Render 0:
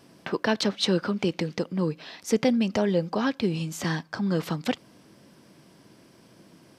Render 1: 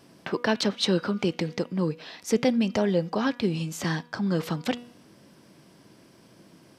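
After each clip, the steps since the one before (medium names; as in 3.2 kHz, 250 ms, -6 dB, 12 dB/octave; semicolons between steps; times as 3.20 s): de-hum 241.5 Hz, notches 16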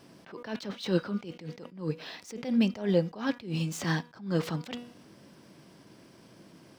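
median filter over 3 samples; attacks held to a fixed rise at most 140 dB/s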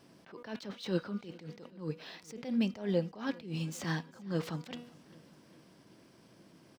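feedback delay 400 ms, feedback 59%, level -23.5 dB; trim -5.5 dB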